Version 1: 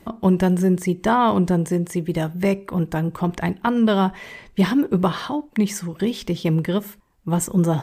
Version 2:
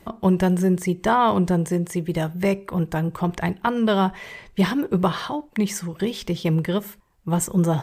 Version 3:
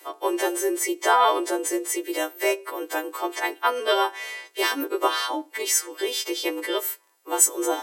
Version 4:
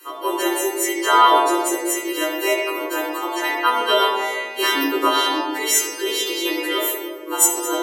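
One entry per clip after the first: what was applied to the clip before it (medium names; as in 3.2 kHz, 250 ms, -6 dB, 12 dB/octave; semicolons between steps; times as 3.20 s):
peaking EQ 260 Hz -6.5 dB 0.53 oct
partials quantised in pitch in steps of 2 st; crackle 47 per s -47 dBFS; steep high-pass 290 Hz 96 dB/octave
reverberation RT60 1.7 s, pre-delay 16 ms, DRR -2.5 dB; trim -1 dB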